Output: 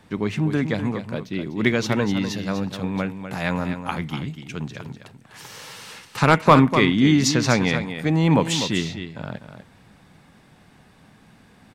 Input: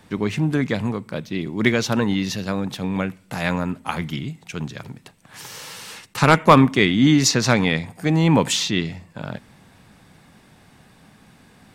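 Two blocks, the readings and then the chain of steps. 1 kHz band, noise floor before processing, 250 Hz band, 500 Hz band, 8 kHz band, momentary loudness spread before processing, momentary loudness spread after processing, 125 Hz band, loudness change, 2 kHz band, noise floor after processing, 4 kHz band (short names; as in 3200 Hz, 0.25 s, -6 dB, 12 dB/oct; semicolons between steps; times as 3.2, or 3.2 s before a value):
-1.0 dB, -53 dBFS, -1.0 dB, -1.0 dB, -4.0 dB, 19 LU, 19 LU, -1.0 dB, -1.5 dB, -1.5 dB, -53 dBFS, -2.5 dB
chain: high shelf 5600 Hz -5.5 dB; on a send: echo 0.248 s -9.5 dB; on the sum: gain -1.5 dB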